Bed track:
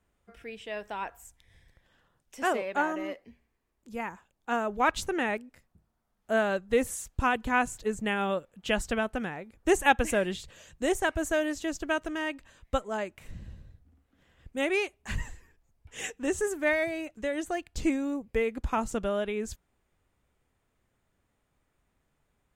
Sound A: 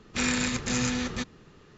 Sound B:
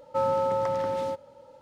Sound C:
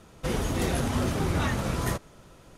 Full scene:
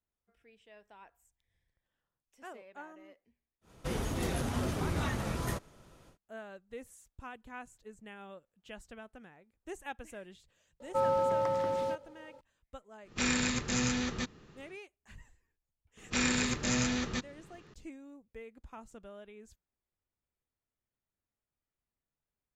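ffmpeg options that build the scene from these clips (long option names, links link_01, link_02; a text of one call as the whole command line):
ffmpeg -i bed.wav -i cue0.wav -i cue1.wav -i cue2.wav -filter_complex "[1:a]asplit=2[link_01][link_02];[0:a]volume=-20dB[link_03];[3:a]atrim=end=2.57,asetpts=PTS-STARTPTS,volume=-6.5dB,afade=type=in:duration=0.1,afade=type=out:start_time=2.47:duration=0.1,adelay=159201S[link_04];[2:a]atrim=end=1.61,asetpts=PTS-STARTPTS,volume=-3.5dB,afade=type=in:duration=0.004:curve=hsin,afade=type=out:start_time=1.606:duration=0.004:curve=hsin,adelay=10800[link_05];[link_01]atrim=end=1.77,asetpts=PTS-STARTPTS,volume=-3.5dB,afade=type=in:duration=0.1,afade=type=out:start_time=1.67:duration=0.1,adelay=13020[link_06];[link_02]atrim=end=1.77,asetpts=PTS-STARTPTS,volume=-3dB,afade=type=in:duration=0.004:curve=hsin,afade=type=out:start_time=1.766:duration=0.004:curve=hsin,adelay=15970[link_07];[link_03][link_04][link_05][link_06][link_07]amix=inputs=5:normalize=0" out.wav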